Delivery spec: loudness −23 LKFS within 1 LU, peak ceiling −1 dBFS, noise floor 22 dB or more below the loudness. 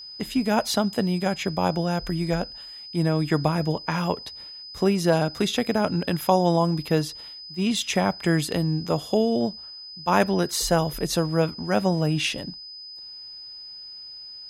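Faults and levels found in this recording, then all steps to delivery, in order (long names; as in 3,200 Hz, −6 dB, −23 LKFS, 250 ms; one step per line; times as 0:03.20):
interfering tone 5,000 Hz; level of the tone −38 dBFS; integrated loudness −24.5 LKFS; sample peak −5.0 dBFS; target loudness −23.0 LKFS
→ notch filter 5,000 Hz, Q 30
level +1.5 dB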